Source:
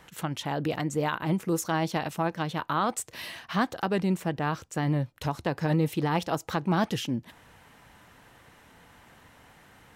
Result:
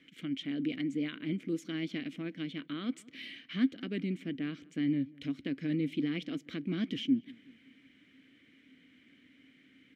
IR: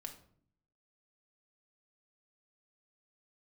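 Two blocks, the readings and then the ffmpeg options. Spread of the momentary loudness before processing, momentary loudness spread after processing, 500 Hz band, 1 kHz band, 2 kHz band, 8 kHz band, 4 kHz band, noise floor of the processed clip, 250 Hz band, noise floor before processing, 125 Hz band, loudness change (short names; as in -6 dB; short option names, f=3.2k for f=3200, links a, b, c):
6 LU, 8 LU, -12.5 dB, -26.5 dB, -9.5 dB, under -20 dB, -5.0 dB, -64 dBFS, -2.5 dB, -57 dBFS, -11.5 dB, -6.0 dB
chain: -filter_complex "[0:a]asplit=3[a][b][c];[a]bandpass=f=270:t=q:w=8,volume=0dB[d];[b]bandpass=f=2.29k:t=q:w=8,volume=-6dB[e];[c]bandpass=f=3.01k:t=q:w=8,volume=-9dB[f];[d][e][f]amix=inputs=3:normalize=0,asplit=2[g][h];[h]adelay=185,lowpass=f=1.7k:p=1,volume=-23dB,asplit=2[i][j];[j]adelay=185,lowpass=f=1.7k:p=1,volume=0.53,asplit=2[k][l];[l]adelay=185,lowpass=f=1.7k:p=1,volume=0.53,asplit=2[m][n];[n]adelay=185,lowpass=f=1.7k:p=1,volume=0.53[o];[g][i][k][m][o]amix=inputs=5:normalize=0,volume=6.5dB"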